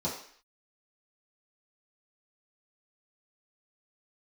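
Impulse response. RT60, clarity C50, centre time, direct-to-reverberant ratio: 0.55 s, 5.5 dB, 34 ms, −8.5 dB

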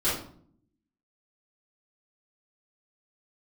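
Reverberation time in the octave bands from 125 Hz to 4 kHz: 0.95, 0.95, 0.65, 0.50, 0.40, 0.35 seconds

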